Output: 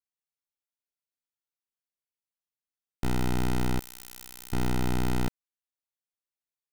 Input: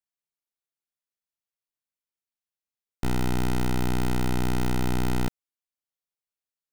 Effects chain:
0:03.79–0:04.53: first-order pre-emphasis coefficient 0.97
leveller curve on the samples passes 1
level −4 dB

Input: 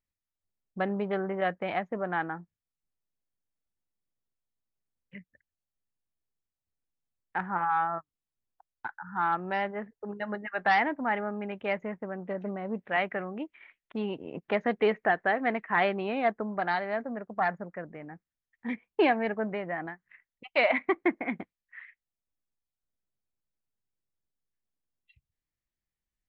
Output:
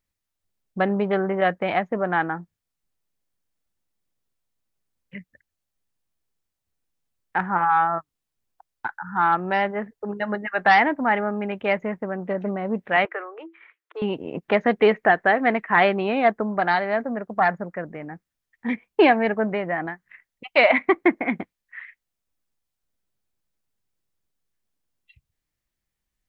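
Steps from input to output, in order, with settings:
0:13.05–0:14.02: Chebyshev high-pass with heavy ripple 320 Hz, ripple 9 dB
level +8 dB

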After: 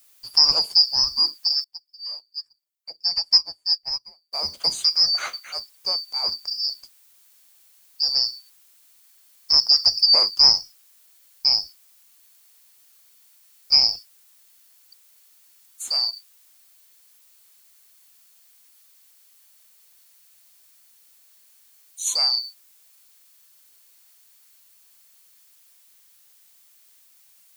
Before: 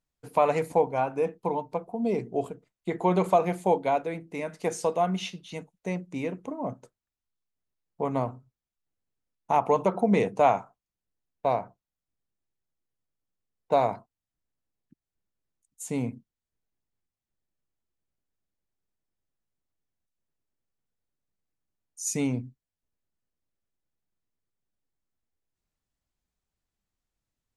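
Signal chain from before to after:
band-splitting scrambler in four parts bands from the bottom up 2341
background noise blue −62 dBFS
0:01.64–0:04.33: expander for the loud parts 2.5 to 1, over −37 dBFS
level +6 dB

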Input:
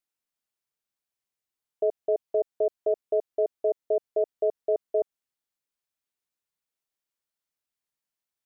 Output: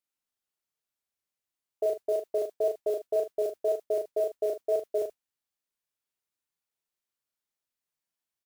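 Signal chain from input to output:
tape wow and flutter 18 cents
noise that follows the level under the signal 27 dB
on a send: ambience of single reflections 36 ms −3.5 dB, 77 ms −13.5 dB
on the sum: level −3 dB

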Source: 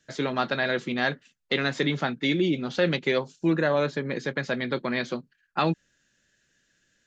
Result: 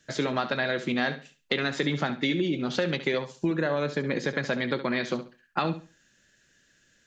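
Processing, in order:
downward compressor, threshold −28 dBFS, peak gain reduction 10.5 dB
flutter between parallel walls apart 11.8 metres, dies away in 0.34 s
level +4.5 dB

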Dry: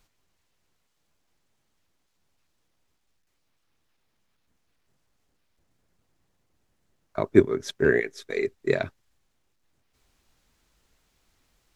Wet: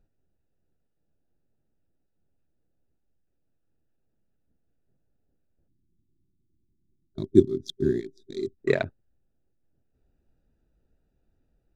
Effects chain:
adaptive Wiener filter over 41 samples
gain on a spectral selection 0:05.68–0:08.59, 400–3,200 Hz −23 dB
level +1 dB

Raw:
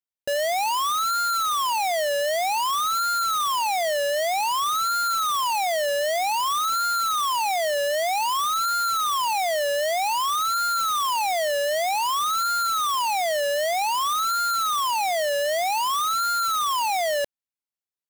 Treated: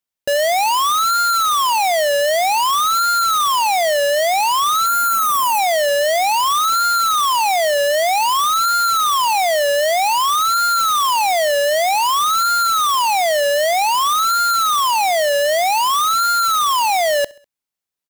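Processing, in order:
0:04.86–0:05.59: graphic EQ with 15 bands 250 Hz +7 dB, 4,000 Hz −10 dB, 16,000 Hz +7 dB
repeating echo 66 ms, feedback 51%, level −24 dB
level +7.5 dB

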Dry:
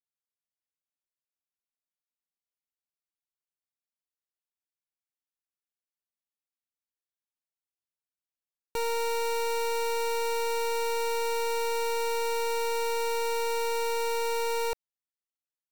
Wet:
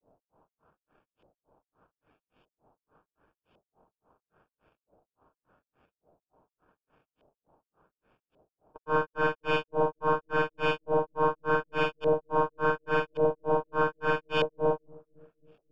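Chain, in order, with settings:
compressor on every frequency bin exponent 0.6
graphic EQ with 15 bands 400 Hz +4 dB, 1,600 Hz +9 dB, 4,000 Hz +6 dB, 10,000 Hz −4 dB
brickwall limiter −23.5 dBFS, peak gain reduction 4.5 dB
decimation without filtering 22×
auto-filter low-pass saw up 0.83 Hz 590–3,000 Hz
granular cloud 213 ms, grains 3.5 per second, pitch spread up and down by 0 semitones
on a send: bucket-brigade delay 270 ms, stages 1,024, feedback 61%, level −23.5 dB
on the sum: level +4.5 dB

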